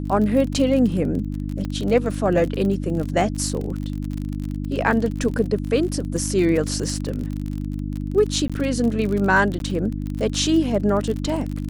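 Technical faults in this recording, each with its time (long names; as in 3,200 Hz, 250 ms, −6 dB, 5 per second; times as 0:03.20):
surface crackle 39 per second −26 dBFS
mains hum 50 Hz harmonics 6 −27 dBFS
0:01.65: click −17 dBFS
0:08.48–0:08.50: drop-out 16 ms
0:09.59–0:09.60: drop-out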